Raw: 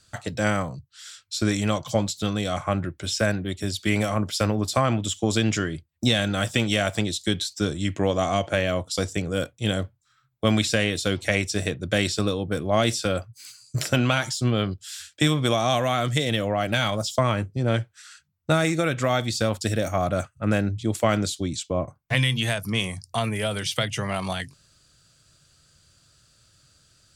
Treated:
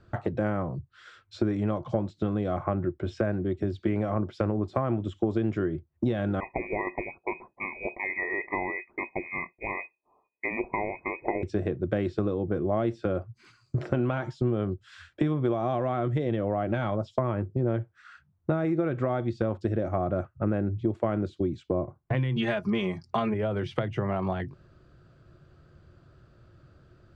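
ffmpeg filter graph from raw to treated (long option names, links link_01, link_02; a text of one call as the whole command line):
ffmpeg -i in.wav -filter_complex "[0:a]asettb=1/sr,asplit=3[link_01][link_02][link_03];[link_01]atrim=end=6.404[link_04];[link_02]atrim=start=6.4:end=11.43,asetpts=PTS-STARTPTS,afade=type=in:duration=0.004:curve=qsin,afade=type=out:start_time=5.026:duration=0.004:curve=qsin,asuperstop=centerf=1100:order=8:qfactor=1.4,equalizer=frequency=170:width_type=o:width=2:gain=-10.5,lowpass=frequency=2200:width_type=q:width=0.5098,lowpass=frequency=2200:width_type=q:width=0.6013,lowpass=frequency=2200:width_type=q:width=0.9,lowpass=frequency=2200:width_type=q:width=2.563,afreqshift=-2600[link_05];[link_03]atrim=start=11.426[link_06];[link_04][link_05]acrossfade=duration=0.004:curve1=hsin:curve2=qsin[link_07];[link_07][link_06]acrossfade=duration=0.004:curve1=qsin:curve2=hsin,asettb=1/sr,asplit=3[link_08][link_09][link_10];[link_08]atrim=end=22.364[link_11];[link_09]atrim=start=22.36:end=23.34,asetpts=PTS-STARTPTS,afade=type=in:duration=0.004:curve=qsin,afade=type=out:start_time=0.976:duration=0.004:curve=qsin,lowpass=8400,equalizer=frequency=5200:width=0.31:gain=10.5,aecho=1:1:4.9:0.79,atrim=end_sample=43218[link_12];[link_10]atrim=start=23.336[link_13];[link_11][link_12]acrossfade=duration=0.004:curve1=hsin:curve2=qsin[link_14];[link_14][link_13]acrossfade=duration=0.004:curve1=qsin:curve2=hsin,lowpass=1100,equalizer=frequency=360:width=6.3:gain=11,acompressor=threshold=-36dB:ratio=3,volume=8dB" out.wav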